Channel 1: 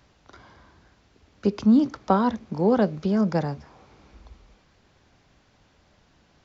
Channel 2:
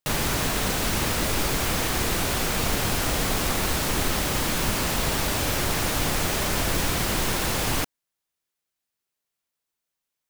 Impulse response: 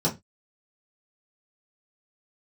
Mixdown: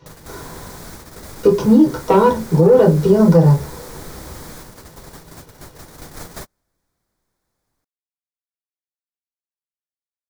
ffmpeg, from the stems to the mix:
-filter_complex "[0:a]aecho=1:1:2.1:0.65,asoftclip=type=tanh:threshold=-15.5dB,volume=1dB,asplit=3[link_01][link_02][link_03];[link_02]volume=-3.5dB[link_04];[1:a]equalizer=frequency=2800:width_type=o:width=0.5:gain=-13,volume=-0.5dB,afade=type=in:start_time=6:duration=0.34:silence=0.316228[link_05];[link_03]apad=whole_len=454083[link_06];[link_05][link_06]sidechaingate=range=-49dB:threshold=-56dB:ratio=16:detection=peak[link_07];[2:a]atrim=start_sample=2205[link_08];[link_04][link_08]afir=irnorm=-1:irlink=0[link_09];[link_01][link_07][link_09]amix=inputs=3:normalize=0,alimiter=limit=-2.5dB:level=0:latency=1:release=124"

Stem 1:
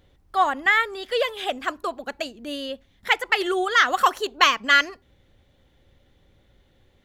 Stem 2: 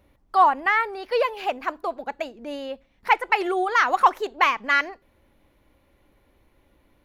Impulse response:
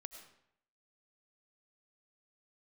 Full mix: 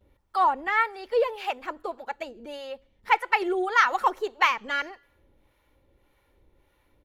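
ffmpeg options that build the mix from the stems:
-filter_complex "[0:a]volume=-19.5dB,asplit=2[link_01][link_02];[link_02]volume=-8dB[link_03];[1:a]aecho=1:1:2.2:0.32,acrossover=split=680[link_04][link_05];[link_04]aeval=exprs='val(0)*(1-0.7/2+0.7/2*cos(2*PI*1.7*n/s))':channel_layout=same[link_06];[link_05]aeval=exprs='val(0)*(1-0.7/2-0.7/2*cos(2*PI*1.7*n/s))':channel_layout=same[link_07];[link_06][link_07]amix=inputs=2:normalize=0,adelay=8.7,volume=-1dB[link_08];[2:a]atrim=start_sample=2205[link_09];[link_03][link_09]afir=irnorm=-1:irlink=0[link_10];[link_01][link_08][link_10]amix=inputs=3:normalize=0"

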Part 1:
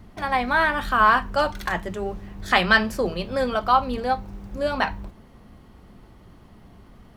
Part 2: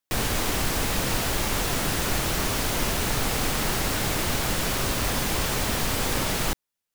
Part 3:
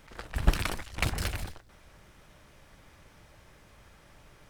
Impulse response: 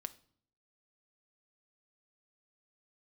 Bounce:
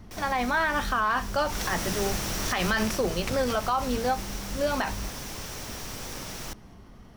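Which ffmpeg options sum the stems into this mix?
-filter_complex "[0:a]volume=-7dB[link_01];[1:a]volume=-12.5dB,afade=type=in:start_time=1.44:duration=0.21:silence=0.298538,afade=type=out:start_time=2.59:duration=0.45:silence=0.473151[link_02];[2:a]adelay=2250,volume=-12.5dB[link_03];[link_01][link_02][link_03]amix=inputs=3:normalize=0,acontrast=61,equalizer=frequency=5700:width_type=o:width=0.27:gain=9,alimiter=limit=-16.5dB:level=0:latency=1:release=64"

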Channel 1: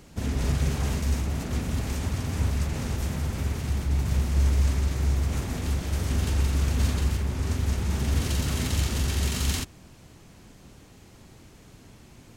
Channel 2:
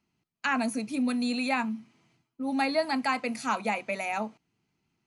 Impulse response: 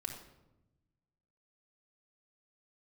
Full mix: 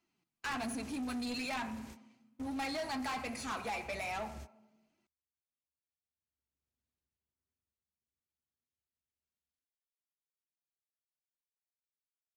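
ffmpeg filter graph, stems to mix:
-filter_complex "[0:a]volume=-5.5dB,afade=type=in:start_time=6.14:duration=0.52:silence=0.251189,afade=type=out:start_time=7.48:duration=0.41:silence=0.446684[link_01];[1:a]flanger=delay=2.9:depth=5.7:regen=32:speed=1.2:shape=sinusoidal,volume=-1.5dB,asplit=3[link_02][link_03][link_04];[link_03]volume=-5dB[link_05];[link_04]apad=whole_len=545282[link_06];[link_01][link_06]sidechaingate=range=-58dB:threshold=-59dB:ratio=16:detection=peak[link_07];[2:a]atrim=start_sample=2205[link_08];[link_05][link_08]afir=irnorm=-1:irlink=0[link_09];[link_07][link_02][link_09]amix=inputs=3:normalize=0,lowshelf=frequency=140:gain=-12,asoftclip=type=tanh:threshold=-34.5dB"

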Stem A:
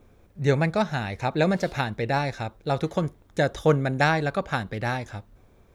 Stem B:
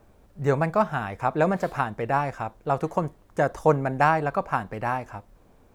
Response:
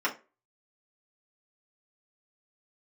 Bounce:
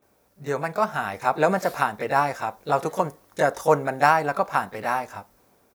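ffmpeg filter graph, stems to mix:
-filter_complex "[0:a]volume=-9dB[link_01];[1:a]aexciter=amount=2.4:drive=4.3:freq=4500,adelay=21,volume=-4dB,asplit=3[link_02][link_03][link_04];[link_03]volume=-21.5dB[link_05];[link_04]apad=whole_len=253235[link_06];[link_01][link_06]sidechaincompress=threshold=-32dB:ratio=8:attack=16:release=460[link_07];[2:a]atrim=start_sample=2205[link_08];[link_05][link_08]afir=irnorm=-1:irlink=0[link_09];[link_07][link_02][link_09]amix=inputs=3:normalize=0,highpass=frequency=340:poles=1,dynaudnorm=framelen=240:gausssize=7:maxgain=7.5dB"

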